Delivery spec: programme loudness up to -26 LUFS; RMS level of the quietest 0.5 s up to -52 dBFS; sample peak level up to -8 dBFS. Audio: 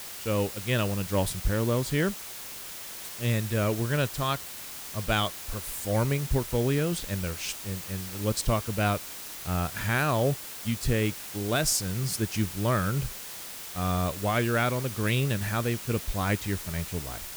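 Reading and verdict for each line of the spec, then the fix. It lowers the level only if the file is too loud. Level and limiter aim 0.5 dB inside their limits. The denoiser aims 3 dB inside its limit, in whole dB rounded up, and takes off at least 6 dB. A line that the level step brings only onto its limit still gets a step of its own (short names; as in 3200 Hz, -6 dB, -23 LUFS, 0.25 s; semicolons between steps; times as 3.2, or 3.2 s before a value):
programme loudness -29.0 LUFS: OK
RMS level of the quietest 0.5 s -40 dBFS: fail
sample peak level -12.0 dBFS: OK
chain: denoiser 15 dB, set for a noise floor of -40 dBFS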